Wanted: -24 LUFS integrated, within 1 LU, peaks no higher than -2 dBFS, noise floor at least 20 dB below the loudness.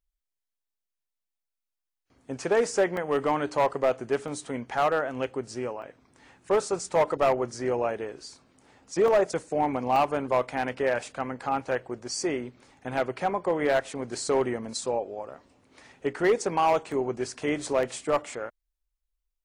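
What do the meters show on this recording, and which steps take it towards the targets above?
clipped samples 0.9%; clipping level -16.5 dBFS; dropouts 7; longest dropout 1.3 ms; loudness -27.5 LUFS; peak level -16.5 dBFS; loudness target -24.0 LUFS
-> clip repair -16.5 dBFS; interpolate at 2.97/4.28/5.82/9.08/9.96/16.92/17.83 s, 1.3 ms; trim +3.5 dB

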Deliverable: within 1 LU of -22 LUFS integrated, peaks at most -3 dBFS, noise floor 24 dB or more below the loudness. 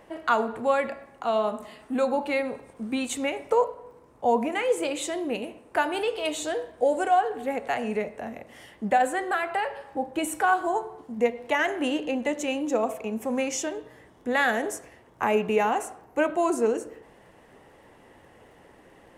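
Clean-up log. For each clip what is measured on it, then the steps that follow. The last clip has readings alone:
tick rate 15 per s; loudness -27.0 LUFS; peak level -10.5 dBFS; loudness target -22.0 LUFS
-> de-click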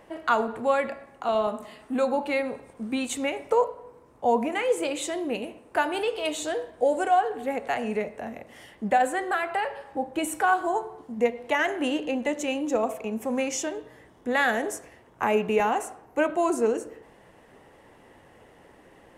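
tick rate 0 per s; loudness -27.0 LUFS; peak level -10.5 dBFS; loudness target -22.0 LUFS
-> trim +5 dB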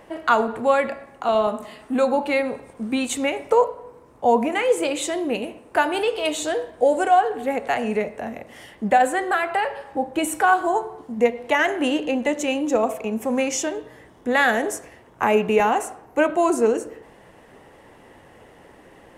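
loudness -22.0 LUFS; peak level -5.5 dBFS; noise floor -50 dBFS

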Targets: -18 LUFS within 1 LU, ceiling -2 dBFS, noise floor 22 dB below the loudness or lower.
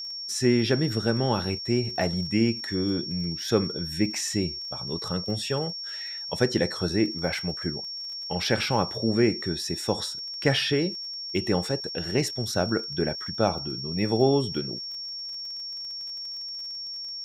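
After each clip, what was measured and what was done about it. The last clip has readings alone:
tick rate 29 per s; steady tone 5.5 kHz; tone level -33 dBFS; loudness -27.0 LUFS; peak level -7.0 dBFS; loudness target -18.0 LUFS
-> de-click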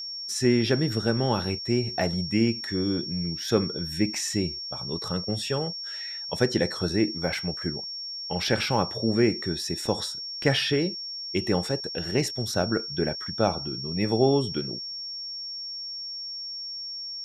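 tick rate 0.058 per s; steady tone 5.5 kHz; tone level -33 dBFS
-> band-stop 5.5 kHz, Q 30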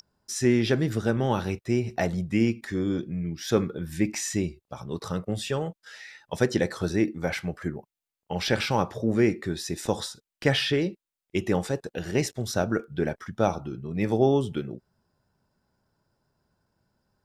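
steady tone not found; loudness -27.5 LUFS; peak level -6.5 dBFS; loudness target -18.0 LUFS
-> trim +9.5 dB; peak limiter -2 dBFS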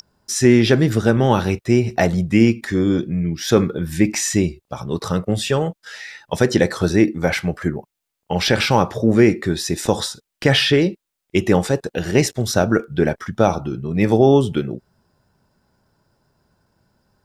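loudness -18.5 LUFS; peak level -2.0 dBFS; noise floor -80 dBFS

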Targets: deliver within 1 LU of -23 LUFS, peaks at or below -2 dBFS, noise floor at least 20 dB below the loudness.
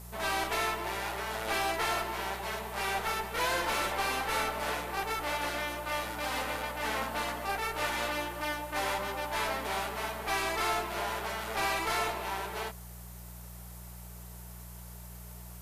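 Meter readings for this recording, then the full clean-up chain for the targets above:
hum 60 Hz; highest harmonic 180 Hz; hum level -45 dBFS; noise floor -46 dBFS; noise floor target -53 dBFS; loudness -32.5 LUFS; peak level -20.0 dBFS; loudness target -23.0 LUFS
-> de-hum 60 Hz, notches 3; noise reduction 7 dB, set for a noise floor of -46 dBFS; trim +9.5 dB

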